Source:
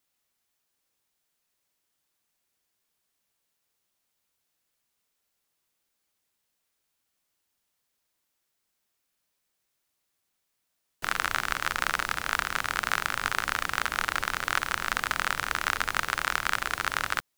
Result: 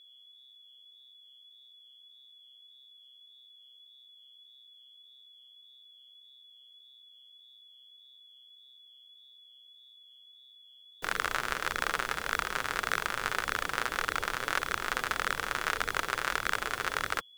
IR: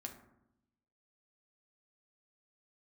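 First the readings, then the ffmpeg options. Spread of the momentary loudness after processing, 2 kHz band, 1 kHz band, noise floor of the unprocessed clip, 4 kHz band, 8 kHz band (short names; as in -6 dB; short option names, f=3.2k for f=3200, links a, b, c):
1 LU, -3.5 dB, -3.0 dB, -79 dBFS, -3.0 dB, -4.0 dB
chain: -af "equalizer=f=450:w=1.9:g=9,aeval=exprs='val(0)+0.00316*sin(2*PI*3400*n/s)':c=same,flanger=delay=0.5:depth=7.5:regen=-37:speed=1.7:shape=sinusoidal"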